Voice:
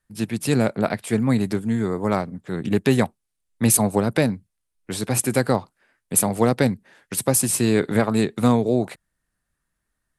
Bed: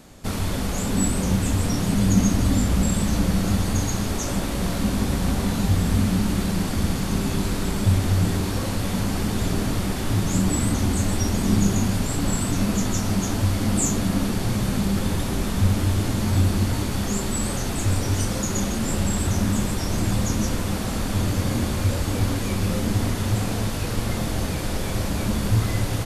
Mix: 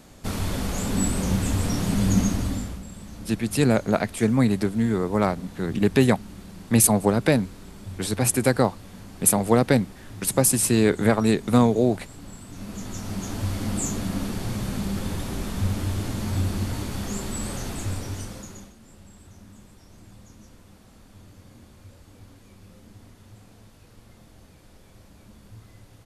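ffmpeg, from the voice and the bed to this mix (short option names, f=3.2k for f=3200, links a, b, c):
-filter_complex "[0:a]adelay=3100,volume=0dB[a];[1:a]volume=11dB,afade=t=out:st=2.16:d=0.65:silence=0.149624,afade=t=in:st=12.48:d=1.05:silence=0.223872,afade=t=out:st=17.67:d=1.07:silence=0.0944061[b];[a][b]amix=inputs=2:normalize=0"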